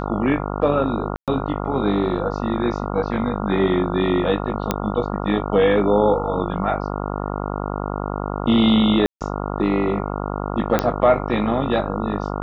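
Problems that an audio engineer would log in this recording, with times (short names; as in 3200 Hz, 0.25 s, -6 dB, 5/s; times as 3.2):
buzz 50 Hz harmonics 28 -26 dBFS
1.16–1.28 gap 0.117 s
4.71 pop -5 dBFS
9.06–9.21 gap 0.148 s
10.79 pop -5 dBFS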